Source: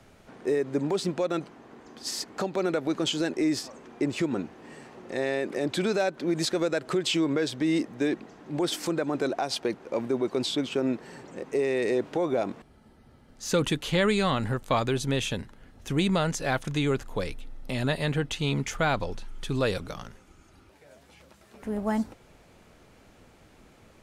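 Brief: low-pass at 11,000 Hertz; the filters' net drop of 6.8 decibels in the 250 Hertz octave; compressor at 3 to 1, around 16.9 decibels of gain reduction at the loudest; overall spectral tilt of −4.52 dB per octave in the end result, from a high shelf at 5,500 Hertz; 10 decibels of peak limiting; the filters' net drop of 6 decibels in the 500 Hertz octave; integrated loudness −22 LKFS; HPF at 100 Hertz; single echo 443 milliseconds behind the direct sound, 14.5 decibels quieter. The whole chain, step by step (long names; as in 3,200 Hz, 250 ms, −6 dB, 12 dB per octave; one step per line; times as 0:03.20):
high-pass filter 100 Hz
low-pass filter 11,000 Hz
parametric band 250 Hz −7.5 dB
parametric band 500 Hz −5 dB
high-shelf EQ 5,500 Hz −8 dB
downward compressor 3 to 1, threshold −48 dBFS
brickwall limiter −39.5 dBFS
single-tap delay 443 ms −14.5 dB
level +28.5 dB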